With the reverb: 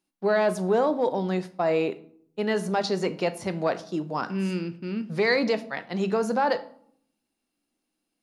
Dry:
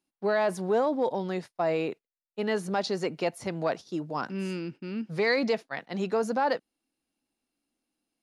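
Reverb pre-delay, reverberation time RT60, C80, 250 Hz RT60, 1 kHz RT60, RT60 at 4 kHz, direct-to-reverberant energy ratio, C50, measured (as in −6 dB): 5 ms, 0.60 s, 20.0 dB, 0.80 s, 0.60 s, 0.40 s, 11.0 dB, 16.5 dB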